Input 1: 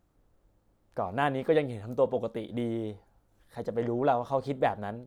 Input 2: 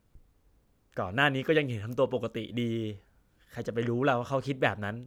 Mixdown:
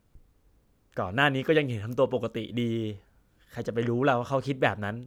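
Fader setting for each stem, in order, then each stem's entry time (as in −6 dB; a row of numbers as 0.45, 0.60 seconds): −15.0, +1.5 decibels; 0.00, 0.00 seconds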